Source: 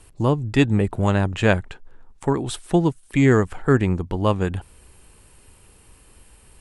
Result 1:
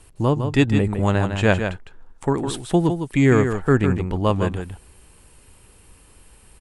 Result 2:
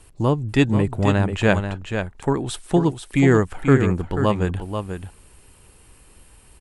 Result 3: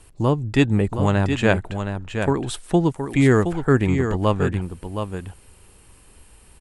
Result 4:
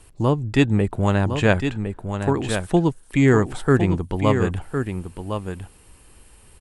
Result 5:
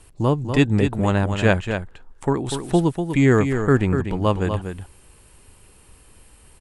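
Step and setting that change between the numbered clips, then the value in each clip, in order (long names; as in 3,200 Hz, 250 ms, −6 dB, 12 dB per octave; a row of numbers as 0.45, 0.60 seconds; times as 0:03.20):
single-tap delay, delay time: 157, 487, 719, 1,058, 244 milliseconds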